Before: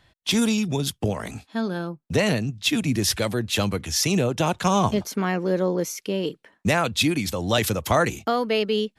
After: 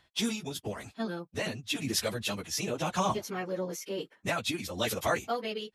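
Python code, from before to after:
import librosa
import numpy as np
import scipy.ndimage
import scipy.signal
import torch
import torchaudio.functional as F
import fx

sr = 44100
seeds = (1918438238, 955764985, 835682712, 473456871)

y = fx.low_shelf(x, sr, hz=290.0, db=-7.0)
y = fx.stretch_vocoder_free(y, sr, factor=0.64)
y = y * (1.0 - 0.33 / 2.0 + 0.33 / 2.0 * np.cos(2.0 * np.pi * 0.99 * (np.arange(len(y)) / sr)))
y = y * 10.0 ** (-2.5 / 20.0)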